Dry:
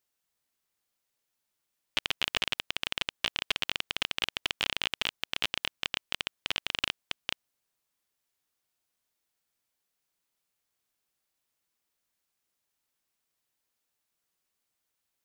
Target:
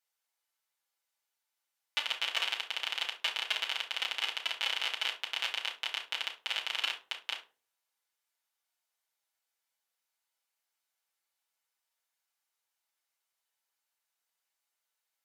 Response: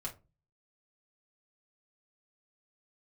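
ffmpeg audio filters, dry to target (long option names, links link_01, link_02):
-filter_complex "[0:a]highpass=720[link_01];[1:a]atrim=start_sample=2205,asetrate=30870,aresample=44100[link_02];[link_01][link_02]afir=irnorm=-1:irlink=0,volume=-2.5dB"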